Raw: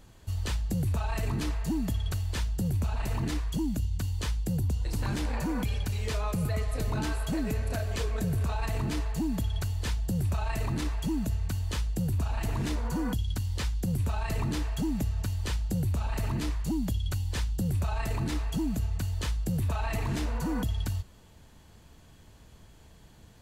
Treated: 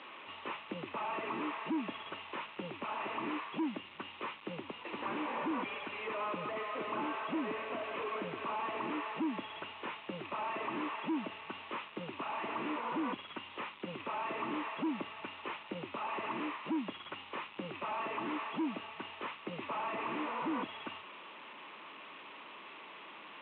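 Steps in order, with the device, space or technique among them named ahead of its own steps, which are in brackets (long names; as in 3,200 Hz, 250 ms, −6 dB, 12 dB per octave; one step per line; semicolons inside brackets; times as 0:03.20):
digital answering machine (band-pass filter 300–3,300 Hz; linear delta modulator 16 kbit/s, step −49.5 dBFS; loudspeaker in its box 400–4,000 Hz, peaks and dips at 470 Hz −7 dB, 710 Hz −8 dB, 1,100 Hz +6 dB, 1,600 Hz −7 dB, 2,600 Hz +4 dB, 3,900 Hz +9 dB)
level +7 dB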